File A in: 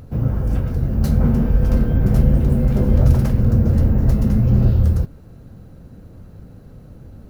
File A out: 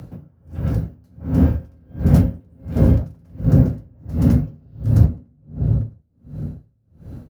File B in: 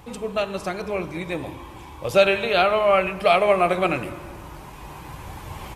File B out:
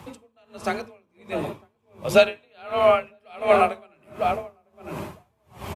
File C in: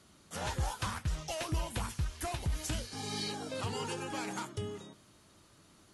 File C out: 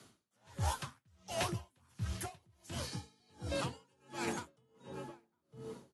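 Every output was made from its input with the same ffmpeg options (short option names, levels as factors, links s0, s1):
-filter_complex "[0:a]afreqshift=31,asplit=2[s0][s1];[s1]adelay=954,lowpass=f=830:p=1,volume=0.562,asplit=2[s2][s3];[s3]adelay=954,lowpass=f=830:p=1,volume=0.28,asplit=2[s4][s5];[s5]adelay=954,lowpass=f=830:p=1,volume=0.28,asplit=2[s6][s7];[s7]adelay=954,lowpass=f=830:p=1,volume=0.28[s8];[s0][s2][s4][s6][s8]amix=inputs=5:normalize=0,aeval=exprs='val(0)*pow(10,-39*(0.5-0.5*cos(2*PI*1.4*n/s))/20)':c=same,volume=1.41"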